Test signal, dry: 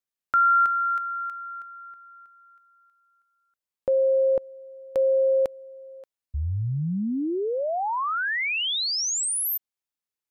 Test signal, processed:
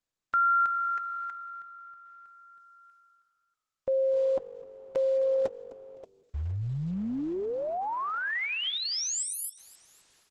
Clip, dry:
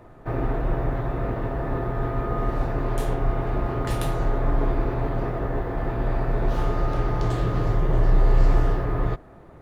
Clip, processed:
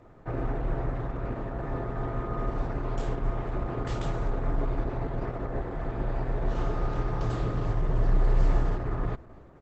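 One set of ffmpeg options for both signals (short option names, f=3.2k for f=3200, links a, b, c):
-filter_complex "[0:a]areverse,acompressor=mode=upward:threshold=-42dB:ratio=2.5:attack=6.2:release=704:knee=2.83:detection=peak,areverse,asplit=4[a][b][c][d];[b]adelay=256,afreqshift=-48,volume=-21dB[e];[c]adelay=512,afreqshift=-96,volume=-30.1dB[f];[d]adelay=768,afreqshift=-144,volume=-39.2dB[g];[a][e][f][g]amix=inputs=4:normalize=0,volume=-5dB" -ar 48000 -c:a libopus -b:a 12k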